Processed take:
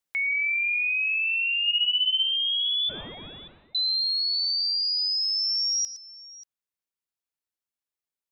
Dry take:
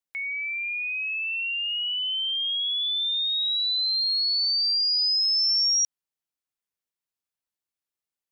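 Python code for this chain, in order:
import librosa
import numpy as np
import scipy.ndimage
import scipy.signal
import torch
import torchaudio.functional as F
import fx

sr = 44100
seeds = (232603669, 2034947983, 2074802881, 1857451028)

y = fx.cvsd(x, sr, bps=16000, at=(2.89, 3.75))
y = fx.rider(y, sr, range_db=5, speed_s=0.5)
y = fx.doubler(y, sr, ms=31.0, db=-2.5, at=(1.64, 2.24))
y = fx.echo_multitap(y, sr, ms=(114, 585), db=(-14.0, -19.5))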